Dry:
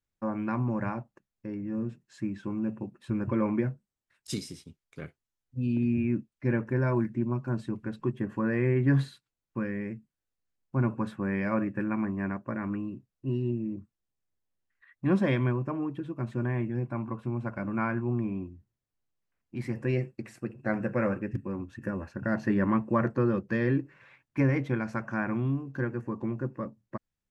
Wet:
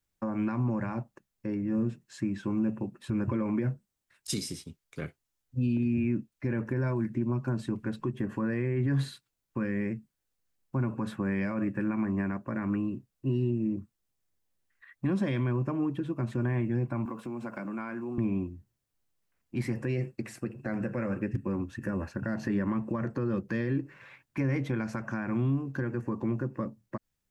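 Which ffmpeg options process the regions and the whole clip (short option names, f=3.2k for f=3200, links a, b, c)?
-filter_complex "[0:a]asettb=1/sr,asplit=3[a][b][c];[a]atrim=end=17.054[d];[b]atrim=start=17.05:end=18.18,asetpts=PTS-STARTPTS,afade=t=in:d=0.004:c=qsin,afade=t=out:st=1.126:d=0.004:c=qsin,highpass=f=170:w=0.5412,highpass=f=170:w=1.3066,highshelf=f=5.6k:g=9,acompressor=threshold=-37dB:ratio=5:attack=3.2:release=140:knee=1:detection=peak[e];[c]atrim=start=18.176[f];[d][e]acrossfade=d=0.004:c1=hsin:c2=qsin[g];[g][f]acrossfade=d=0.004:c1=qsin:c2=hsin,highshelf=f=5.8k:g=5,alimiter=level_in=0.5dB:limit=-24dB:level=0:latency=1:release=113,volume=-0.5dB,acrossover=split=350|3000[h][i][j];[i]acompressor=threshold=-39dB:ratio=6[k];[h][k][j]amix=inputs=3:normalize=0,volume=4dB"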